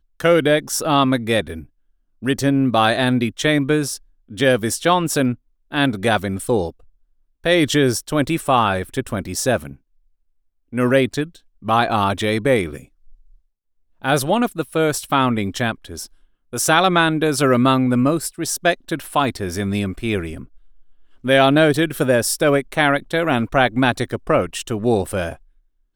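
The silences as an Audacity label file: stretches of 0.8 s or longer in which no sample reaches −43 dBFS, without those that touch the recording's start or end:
9.760000	10.730000	silence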